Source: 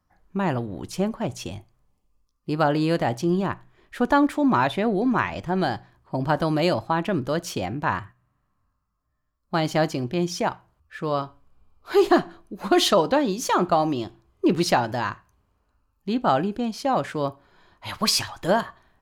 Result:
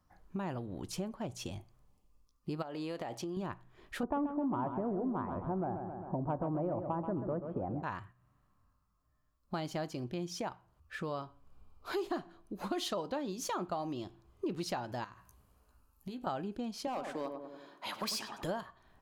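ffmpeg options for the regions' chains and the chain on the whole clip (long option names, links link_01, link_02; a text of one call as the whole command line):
ffmpeg -i in.wav -filter_complex "[0:a]asettb=1/sr,asplit=3[link_01][link_02][link_03];[link_01]atrim=end=2.624[link_04];[link_02]atrim=start=2.62:end=3.37,asetpts=PTS-STARTPTS,afade=type=in:duration=0.004:curve=qsin,afade=type=out:start_time=0.746:duration=0.004:curve=qsin,bass=frequency=250:gain=-10,treble=frequency=4000:gain=-3,bandreject=frequency=1500:width=14,acompressor=threshold=-25dB:ratio=10:attack=3.2:release=140:knee=1:detection=peak[link_05];[link_03]atrim=start=3.366[link_06];[link_04][link_05]acrossfade=duration=0.004:curve1=hsin:curve2=qsin[link_07];[link_07][link_06]acrossfade=duration=0.004:curve1=qsin:curve2=hsin,asettb=1/sr,asplit=3[link_08][link_09][link_10];[link_08]atrim=end=4.034[link_11];[link_09]atrim=start=4.03:end=7.83,asetpts=PTS-STARTPTS,afade=type=in:duration=0.004:curve=qsin,afade=type=out:start_time=3.796:duration=0.004:curve=qsin,lowpass=frequency=1100:width=0.5412,lowpass=frequency=1100:width=1.3066,acontrast=80,aecho=1:1:132|264|396|528|660:0.335|0.144|0.0619|0.0266|0.0115,atrim=end_sample=167580[link_12];[link_10]atrim=start=7.826[link_13];[link_11][link_12]acrossfade=duration=0.004:curve1=hsin:curve2=qsin[link_14];[link_14][link_13]acrossfade=duration=0.004:curve1=qsin:curve2=hsin,asettb=1/sr,asplit=3[link_15][link_16][link_17];[link_15]atrim=end=15.044[link_18];[link_16]atrim=start=15.04:end=16.27,asetpts=PTS-STARTPTS,afade=type=in:duration=0.004:curve=qsin,afade=type=out:start_time=1.226:duration=0.004:curve=qsin,equalizer=frequency=12000:width_type=o:width=1.1:gain=12.5,acompressor=threshold=-37dB:ratio=10:attack=3.2:release=140:knee=1:detection=peak,asplit=2[link_19][link_20];[link_20]adelay=16,volume=-7.5dB[link_21];[link_19][link_21]amix=inputs=2:normalize=0,atrim=end_sample=54243[link_22];[link_17]atrim=start=16.266[link_23];[link_18][link_22]acrossfade=duration=0.004:curve1=hsin:curve2=qsin[link_24];[link_24][link_23]acrossfade=duration=0.004:curve1=qsin:curve2=hsin,asettb=1/sr,asplit=3[link_25][link_26][link_27];[link_25]atrim=end=16.874[link_28];[link_26]atrim=start=16.87:end=18.43,asetpts=PTS-STARTPTS,afade=type=in:duration=0.004:curve=qsin,afade=type=out:start_time=1.556:duration=0.004:curve=qsin,highpass=frequency=210:width=0.5412,highpass=frequency=210:width=1.3066,asoftclip=type=hard:threshold=-18.5dB,asplit=2[link_29][link_30];[link_30]adelay=96,lowpass=frequency=1100:poles=1,volume=-6dB,asplit=2[link_31][link_32];[link_32]adelay=96,lowpass=frequency=1100:poles=1,volume=0.46,asplit=2[link_33][link_34];[link_34]adelay=96,lowpass=frequency=1100:poles=1,volume=0.46,asplit=2[link_35][link_36];[link_36]adelay=96,lowpass=frequency=1100:poles=1,volume=0.46,asplit=2[link_37][link_38];[link_38]adelay=96,lowpass=frequency=1100:poles=1,volume=0.46,asplit=2[link_39][link_40];[link_40]adelay=96,lowpass=frequency=1100:poles=1,volume=0.46[link_41];[link_29][link_31][link_33][link_35][link_37][link_39][link_41]amix=inputs=7:normalize=0,atrim=end_sample=68796[link_42];[link_27]atrim=start=18.426[link_43];[link_28][link_42]acrossfade=duration=0.004:curve1=hsin:curve2=qsin[link_44];[link_44][link_43]acrossfade=duration=0.004:curve1=qsin:curve2=hsin,equalizer=frequency=1900:width_type=o:width=0.77:gain=-2.5,acompressor=threshold=-40dB:ratio=3" out.wav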